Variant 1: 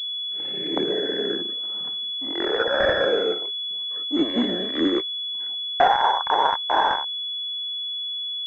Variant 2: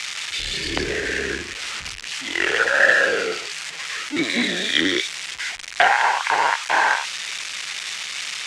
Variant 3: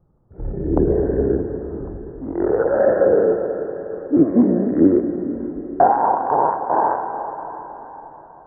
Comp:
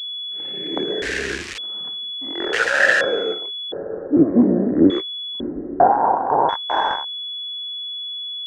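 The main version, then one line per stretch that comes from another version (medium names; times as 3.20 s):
1
1.02–1.58 s: from 2
2.53–3.01 s: from 2
3.72–4.90 s: from 3
5.40–6.49 s: from 3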